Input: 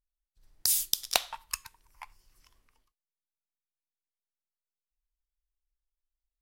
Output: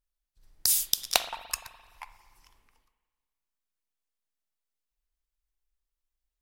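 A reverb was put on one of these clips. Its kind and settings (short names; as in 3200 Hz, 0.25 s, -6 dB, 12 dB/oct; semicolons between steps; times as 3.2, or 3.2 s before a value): spring tank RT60 1.6 s, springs 42/58 ms, chirp 60 ms, DRR 11 dB; gain +2 dB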